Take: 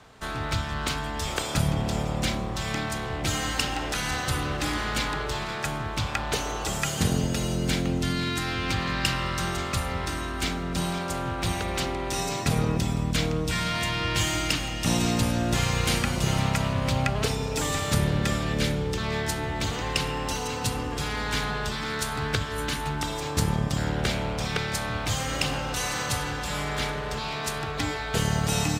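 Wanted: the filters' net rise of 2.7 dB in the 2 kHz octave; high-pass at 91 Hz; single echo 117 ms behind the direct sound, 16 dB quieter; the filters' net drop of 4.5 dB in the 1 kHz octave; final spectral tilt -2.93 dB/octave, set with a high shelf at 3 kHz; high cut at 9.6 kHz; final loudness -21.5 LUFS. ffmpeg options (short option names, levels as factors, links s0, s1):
-af "highpass=91,lowpass=9600,equalizer=f=1000:t=o:g=-8,equalizer=f=2000:t=o:g=3,highshelf=f=3000:g=7,aecho=1:1:117:0.158,volume=1.68"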